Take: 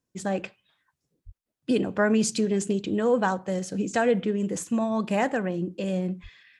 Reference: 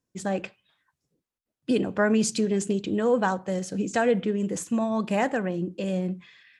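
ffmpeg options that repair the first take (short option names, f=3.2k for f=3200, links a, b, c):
-filter_complex "[0:a]asplit=3[a][b][c];[a]afade=t=out:st=1.25:d=0.02[d];[b]highpass=f=140:w=0.5412,highpass=f=140:w=1.3066,afade=t=in:st=1.25:d=0.02,afade=t=out:st=1.37:d=0.02[e];[c]afade=t=in:st=1.37:d=0.02[f];[d][e][f]amix=inputs=3:normalize=0,asplit=3[g][h][i];[g]afade=t=out:st=6.22:d=0.02[j];[h]highpass=f=140:w=0.5412,highpass=f=140:w=1.3066,afade=t=in:st=6.22:d=0.02,afade=t=out:st=6.34:d=0.02[k];[i]afade=t=in:st=6.34:d=0.02[l];[j][k][l]amix=inputs=3:normalize=0"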